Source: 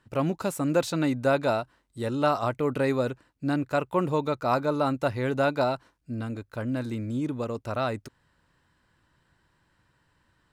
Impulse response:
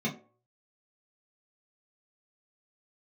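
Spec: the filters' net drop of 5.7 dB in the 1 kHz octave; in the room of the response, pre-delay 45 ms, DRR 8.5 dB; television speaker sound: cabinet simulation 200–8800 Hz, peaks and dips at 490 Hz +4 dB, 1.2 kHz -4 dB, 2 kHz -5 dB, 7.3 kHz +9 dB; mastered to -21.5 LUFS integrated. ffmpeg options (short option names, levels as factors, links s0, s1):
-filter_complex "[0:a]equalizer=f=1000:t=o:g=-7,asplit=2[s0][s1];[1:a]atrim=start_sample=2205,adelay=45[s2];[s1][s2]afir=irnorm=-1:irlink=0,volume=0.178[s3];[s0][s3]amix=inputs=2:normalize=0,highpass=f=200:w=0.5412,highpass=f=200:w=1.3066,equalizer=f=490:t=q:w=4:g=4,equalizer=f=1200:t=q:w=4:g=-4,equalizer=f=2000:t=q:w=4:g=-5,equalizer=f=7300:t=q:w=4:g=9,lowpass=f=8800:w=0.5412,lowpass=f=8800:w=1.3066,volume=2.11"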